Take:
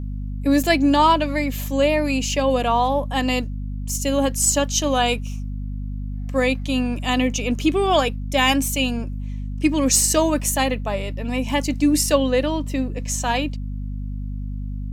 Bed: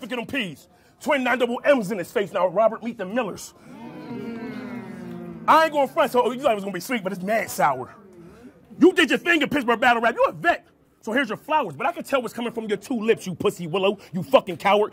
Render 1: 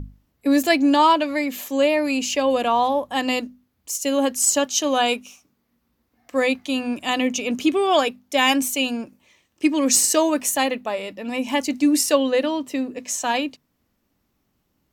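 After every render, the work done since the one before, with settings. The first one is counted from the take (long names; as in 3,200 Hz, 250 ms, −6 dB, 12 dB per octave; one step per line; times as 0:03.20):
mains-hum notches 50/100/150/200/250 Hz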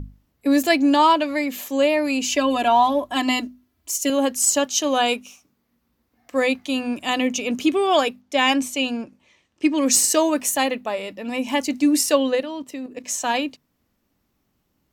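0:02.24–0:04.10: comb filter 3 ms, depth 81%
0:08.21–0:09.78: high-frequency loss of the air 53 metres
0:12.35–0:13.04: output level in coarse steps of 10 dB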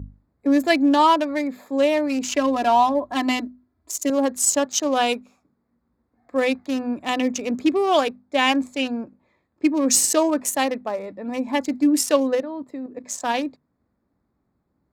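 adaptive Wiener filter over 15 samples
high-pass filter 42 Hz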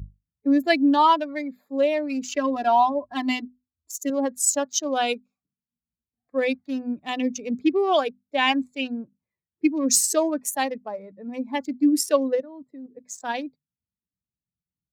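spectral dynamics exaggerated over time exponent 1.5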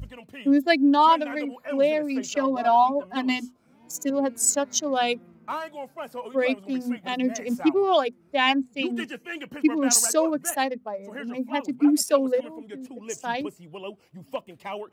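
mix in bed −16 dB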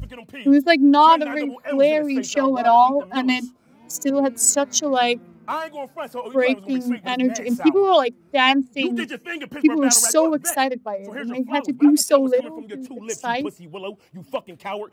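level +5 dB
brickwall limiter −2 dBFS, peak gain reduction 2 dB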